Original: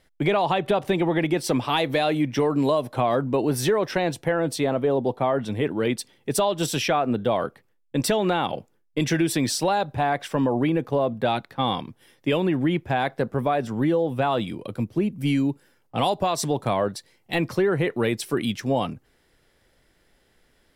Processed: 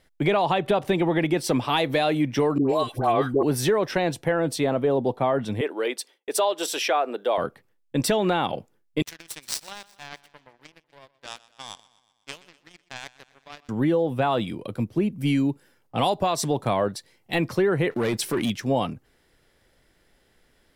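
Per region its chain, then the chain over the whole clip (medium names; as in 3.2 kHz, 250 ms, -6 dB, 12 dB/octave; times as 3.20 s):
2.58–3.43 s: comb 2.6 ms, depth 45% + phase dispersion highs, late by 114 ms, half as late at 930 Hz
5.61–7.38 s: high-pass 370 Hz 24 dB/octave + expander -55 dBFS
9.02–13.69 s: tilt shelf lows -9.5 dB, about 770 Hz + power-law waveshaper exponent 3 + feedback delay 124 ms, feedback 59%, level -19.5 dB
17.91–18.50 s: waveshaping leveller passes 2 + compression 2:1, threshold -25 dBFS
whole clip: none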